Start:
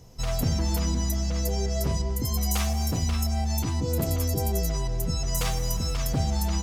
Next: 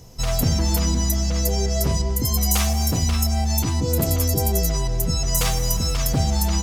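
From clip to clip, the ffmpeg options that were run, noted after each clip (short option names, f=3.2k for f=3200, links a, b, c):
-af "highshelf=f=4.7k:g=4.5,volume=5dB"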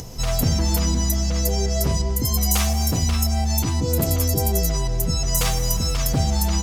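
-af "acompressor=mode=upward:threshold=-27dB:ratio=2.5"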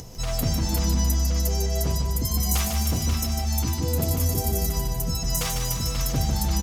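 -af "aecho=1:1:150|300|450|600|750|900|1050:0.501|0.286|0.163|0.0928|0.0529|0.0302|0.0172,volume=-5dB"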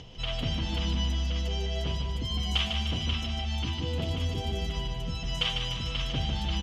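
-af "lowpass=f=3.1k:t=q:w=10,volume=-6.5dB"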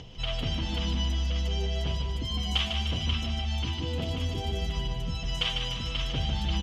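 -af "aphaser=in_gain=1:out_gain=1:delay=4.4:decay=0.2:speed=0.61:type=triangular"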